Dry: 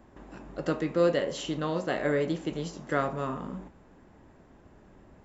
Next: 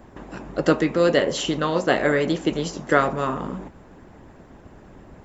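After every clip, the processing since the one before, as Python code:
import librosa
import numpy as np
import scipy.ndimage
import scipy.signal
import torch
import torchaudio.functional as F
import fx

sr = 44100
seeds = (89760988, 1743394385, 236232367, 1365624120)

y = fx.hpss(x, sr, part='percussive', gain_db=8)
y = F.gain(torch.from_numpy(y), 4.5).numpy()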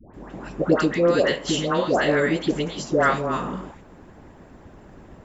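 y = fx.dispersion(x, sr, late='highs', ms=141.0, hz=1000.0)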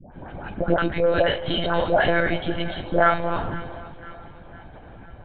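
y = x + 0.67 * np.pad(x, (int(1.3 * sr / 1000.0), 0))[:len(x)]
y = fx.lpc_monotone(y, sr, seeds[0], pitch_hz=170.0, order=16)
y = fx.echo_split(y, sr, split_hz=1300.0, low_ms=379, high_ms=503, feedback_pct=52, wet_db=-16)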